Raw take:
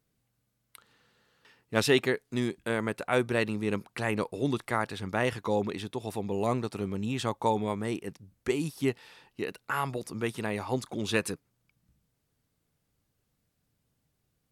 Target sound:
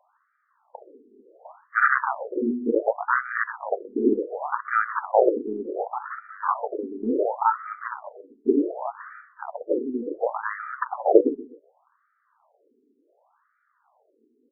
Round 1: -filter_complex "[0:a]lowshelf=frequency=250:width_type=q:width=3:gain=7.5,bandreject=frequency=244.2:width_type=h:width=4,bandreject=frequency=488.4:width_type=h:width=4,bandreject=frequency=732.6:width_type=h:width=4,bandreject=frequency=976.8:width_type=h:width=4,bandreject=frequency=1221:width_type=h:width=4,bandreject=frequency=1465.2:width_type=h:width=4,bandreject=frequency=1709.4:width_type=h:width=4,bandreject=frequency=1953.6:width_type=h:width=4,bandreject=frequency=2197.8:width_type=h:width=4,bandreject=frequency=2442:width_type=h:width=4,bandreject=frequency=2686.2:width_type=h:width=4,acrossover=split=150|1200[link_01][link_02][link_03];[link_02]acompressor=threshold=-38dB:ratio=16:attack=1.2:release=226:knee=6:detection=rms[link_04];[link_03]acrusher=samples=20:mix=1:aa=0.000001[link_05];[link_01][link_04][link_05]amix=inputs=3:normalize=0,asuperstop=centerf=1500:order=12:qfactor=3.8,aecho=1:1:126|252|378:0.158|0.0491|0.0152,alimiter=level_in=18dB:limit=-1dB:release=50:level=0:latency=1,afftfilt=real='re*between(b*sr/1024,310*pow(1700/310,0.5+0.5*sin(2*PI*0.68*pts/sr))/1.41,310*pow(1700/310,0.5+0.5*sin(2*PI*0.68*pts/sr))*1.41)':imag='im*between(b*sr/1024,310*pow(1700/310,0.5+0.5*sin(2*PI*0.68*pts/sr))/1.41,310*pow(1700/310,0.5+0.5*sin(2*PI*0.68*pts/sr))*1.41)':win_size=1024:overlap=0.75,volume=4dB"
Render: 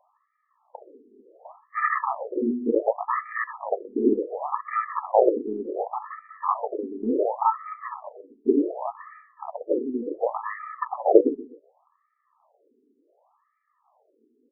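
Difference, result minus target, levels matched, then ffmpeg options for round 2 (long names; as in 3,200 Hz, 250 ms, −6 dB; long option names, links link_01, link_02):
2,000 Hz band −6.5 dB
-filter_complex "[0:a]lowshelf=frequency=250:width_type=q:width=3:gain=7.5,bandreject=frequency=244.2:width_type=h:width=4,bandreject=frequency=488.4:width_type=h:width=4,bandreject=frequency=732.6:width_type=h:width=4,bandreject=frequency=976.8:width_type=h:width=4,bandreject=frequency=1221:width_type=h:width=4,bandreject=frequency=1465.2:width_type=h:width=4,bandreject=frequency=1709.4:width_type=h:width=4,bandreject=frequency=1953.6:width_type=h:width=4,bandreject=frequency=2197.8:width_type=h:width=4,bandreject=frequency=2442:width_type=h:width=4,bandreject=frequency=2686.2:width_type=h:width=4,acrossover=split=150|1200[link_01][link_02][link_03];[link_02]acompressor=threshold=-38dB:ratio=16:attack=1.2:release=226:knee=6:detection=rms[link_04];[link_03]acrusher=samples=20:mix=1:aa=0.000001[link_05];[link_01][link_04][link_05]amix=inputs=3:normalize=0,asuperstop=centerf=3100:order=12:qfactor=3.8,aecho=1:1:126|252|378:0.158|0.0491|0.0152,alimiter=level_in=18dB:limit=-1dB:release=50:level=0:latency=1,afftfilt=real='re*between(b*sr/1024,310*pow(1700/310,0.5+0.5*sin(2*PI*0.68*pts/sr))/1.41,310*pow(1700/310,0.5+0.5*sin(2*PI*0.68*pts/sr))*1.41)':imag='im*between(b*sr/1024,310*pow(1700/310,0.5+0.5*sin(2*PI*0.68*pts/sr))/1.41,310*pow(1700/310,0.5+0.5*sin(2*PI*0.68*pts/sr))*1.41)':win_size=1024:overlap=0.75,volume=4dB"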